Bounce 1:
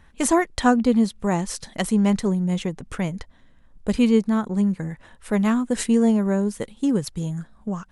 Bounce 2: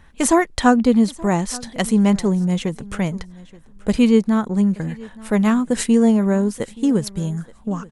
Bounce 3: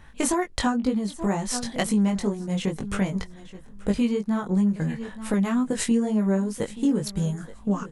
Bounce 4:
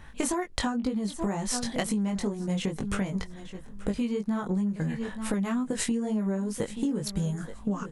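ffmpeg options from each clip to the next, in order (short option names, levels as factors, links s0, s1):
-af "aecho=1:1:876|1752:0.0841|0.0126,volume=1.5"
-af "acompressor=threshold=0.0794:ratio=6,flanger=delay=19:depth=2.3:speed=2.1,volume=1.58"
-af "acompressor=threshold=0.0447:ratio=6,volume=1.19"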